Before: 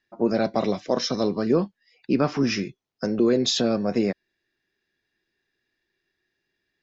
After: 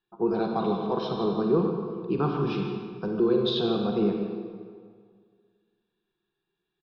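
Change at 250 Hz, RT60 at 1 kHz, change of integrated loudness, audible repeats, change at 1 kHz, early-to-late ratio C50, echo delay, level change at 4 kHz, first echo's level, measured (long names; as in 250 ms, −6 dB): −3.0 dB, 1.9 s, −3.0 dB, 1, 0.0 dB, 2.0 dB, 155 ms, −6.0 dB, −13.0 dB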